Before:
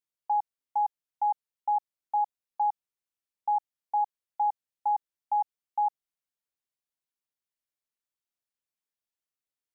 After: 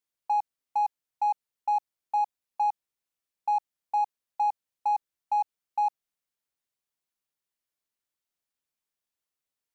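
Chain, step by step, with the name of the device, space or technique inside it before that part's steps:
parallel distortion (in parallel at −8.5 dB: hard clipping −35.5 dBFS, distortion −8 dB)

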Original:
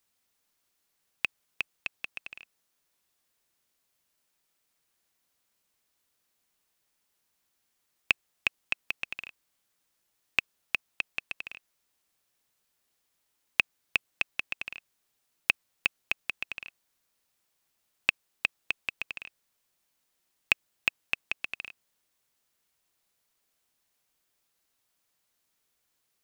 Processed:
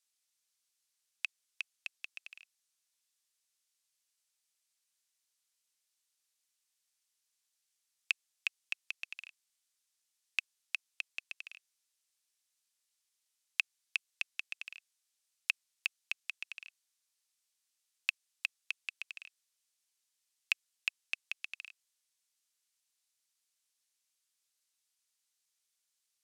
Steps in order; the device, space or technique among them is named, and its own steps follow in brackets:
piezo pickup straight into a mixer (low-pass filter 7,600 Hz 12 dB per octave; first difference)
level +1.5 dB

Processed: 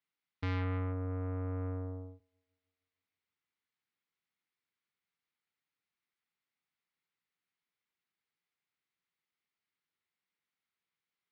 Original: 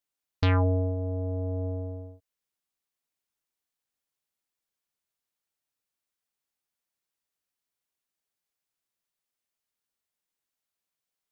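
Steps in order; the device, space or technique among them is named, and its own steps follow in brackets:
analogue delay pedal into a guitar amplifier (bucket-brigade delay 156 ms, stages 1,024, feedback 59%, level −21 dB; tube saturation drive 31 dB, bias 0.45; loudspeaker in its box 83–4,400 Hz, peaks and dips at 170 Hz +5 dB, 610 Hz −9 dB, 1,300 Hz +3 dB, 2,100 Hz +7 dB)

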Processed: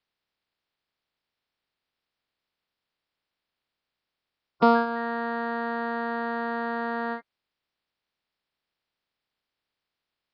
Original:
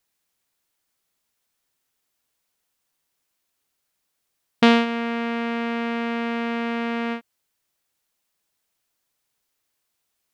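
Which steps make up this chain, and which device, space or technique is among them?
clip after many re-uploads (low-pass filter 4,200 Hz 24 dB per octave; spectral magnitudes quantised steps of 30 dB)
level −3 dB

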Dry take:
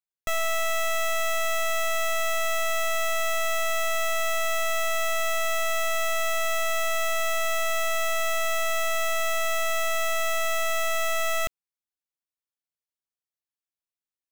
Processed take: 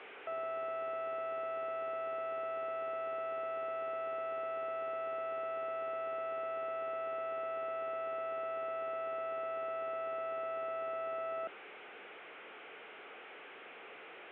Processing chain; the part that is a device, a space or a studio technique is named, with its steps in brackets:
digital answering machine (band-pass filter 340–3,300 Hz; linear delta modulator 16 kbit/s, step −41 dBFS; loudspeaker in its box 380–3,100 Hz, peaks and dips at 430 Hz +6 dB, 610 Hz −3 dB, 1,000 Hz −9 dB, 1,800 Hz −6 dB, 2,800 Hz −3 dB)

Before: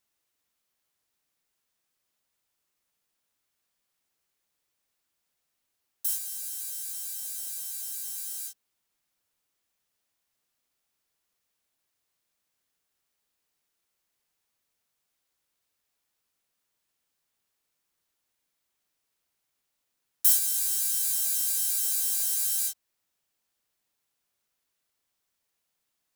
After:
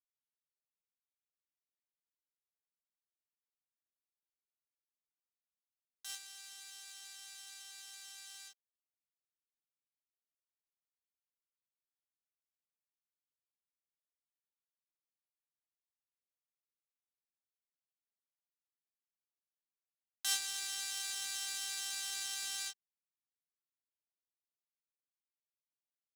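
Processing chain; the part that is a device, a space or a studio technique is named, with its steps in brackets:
phone line with mismatched companding (band-pass filter 300–3,500 Hz; mu-law and A-law mismatch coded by A)
level +8.5 dB

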